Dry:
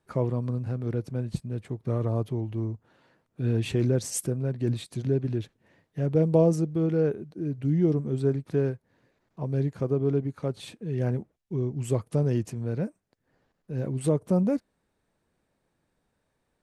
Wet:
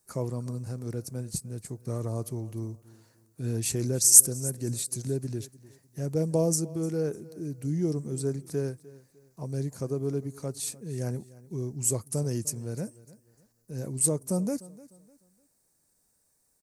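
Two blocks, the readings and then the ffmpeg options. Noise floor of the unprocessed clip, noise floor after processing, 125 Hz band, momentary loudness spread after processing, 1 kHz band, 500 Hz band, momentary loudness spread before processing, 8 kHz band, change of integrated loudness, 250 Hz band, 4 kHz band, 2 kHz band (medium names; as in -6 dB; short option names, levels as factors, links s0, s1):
-77 dBFS, -71 dBFS, -5.0 dB, 13 LU, -5.0 dB, -5.0 dB, 10 LU, +17.0 dB, 0.0 dB, -5.0 dB, +5.0 dB, -5.0 dB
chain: -af "aecho=1:1:301|602|903:0.1|0.032|0.0102,aexciter=amount=12.7:drive=4.1:freq=4900,volume=0.562"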